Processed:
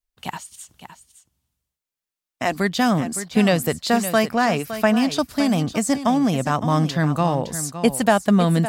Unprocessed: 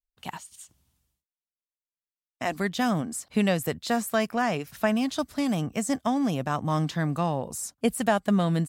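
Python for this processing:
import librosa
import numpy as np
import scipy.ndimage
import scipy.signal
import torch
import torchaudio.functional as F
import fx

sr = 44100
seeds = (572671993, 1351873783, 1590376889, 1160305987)

p1 = fx.dynamic_eq(x, sr, hz=4600.0, q=7.9, threshold_db=-58.0, ratio=4.0, max_db=6)
p2 = p1 + fx.echo_single(p1, sr, ms=563, db=-11.5, dry=0)
y = p2 * librosa.db_to_amplitude(6.5)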